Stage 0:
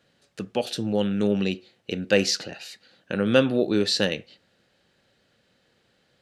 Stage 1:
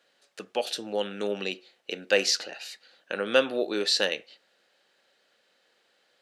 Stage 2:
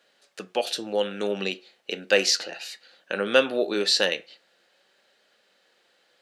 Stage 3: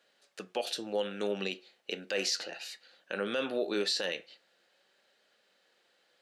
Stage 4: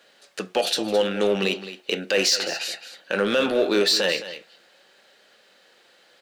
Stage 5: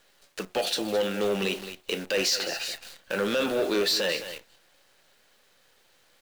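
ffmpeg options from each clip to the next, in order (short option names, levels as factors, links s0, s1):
-af "highpass=490"
-af "flanger=delay=4.8:depth=1.1:regen=84:speed=0.57:shape=sinusoidal,volume=2.37"
-af "alimiter=limit=0.168:level=0:latency=1:release=47,volume=0.531"
-filter_complex "[0:a]asplit=2[s0][s1];[s1]asoftclip=type=hard:threshold=0.0158,volume=0.668[s2];[s0][s2]amix=inputs=2:normalize=0,aecho=1:1:215:0.211,volume=2.82"
-af "acrusher=bits=7:dc=4:mix=0:aa=0.000001,asoftclip=type=tanh:threshold=0.168,volume=0.708"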